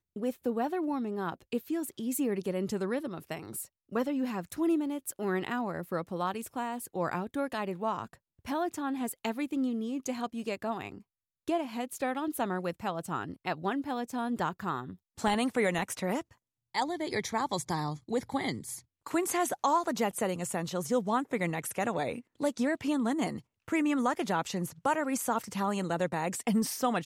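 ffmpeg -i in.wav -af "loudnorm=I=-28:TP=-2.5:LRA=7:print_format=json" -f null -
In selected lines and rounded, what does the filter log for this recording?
"input_i" : "-32.5",
"input_tp" : "-16.2",
"input_lra" : "3.8",
"input_thresh" : "-42.6",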